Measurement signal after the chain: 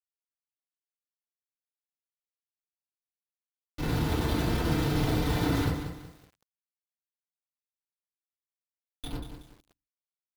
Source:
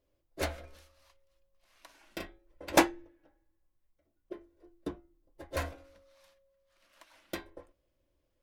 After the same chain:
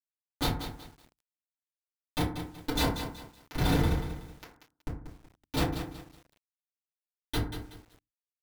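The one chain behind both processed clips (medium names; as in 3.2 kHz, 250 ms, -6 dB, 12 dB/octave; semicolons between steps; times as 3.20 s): gate with hold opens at -51 dBFS; spectral gate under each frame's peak -10 dB weak; FFT filter 140 Hz 0 dB, 2.2 kHz -12 dB, 3.5 kHz +13 dB, 11 kHz -12 dB; harmonic-percussive split percussive -4 dB; peaking EQ 4.3 kHz +4 dB 1.3 oct; whistle 490 Hz -74 dBFS; on a send: echo that smears into a reverb 948 ms, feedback 45%, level -9.5 dB; on the sum: Schmitt trigger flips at -35.5 dBFS; FDN reverb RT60 0.48 s, low-frequency decay 1.3×, high-frequency decay 0.4×, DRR -9.5 dB; bit-crushed delay 187 ms, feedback 35%, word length 10-bit, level -9 dB; trim +8.5 dB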